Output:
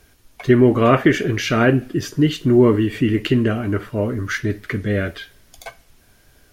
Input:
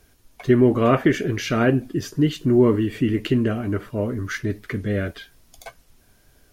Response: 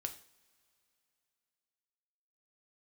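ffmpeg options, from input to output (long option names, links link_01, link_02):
-filter_complex "[0:a]asplit=2[link_01][link_02];[link_02]equalizer=frequency=2200:width=0.34:gain=11.5[link_03];[1:a]atrim=start_sample=2205[link_04];[link_03][link_04]afir=irnorm=-1:irlink=0,volume=-13.5dB[link_05];[link_01][link_05]amix=inputs=2:normalize=0,volume=1.5dB"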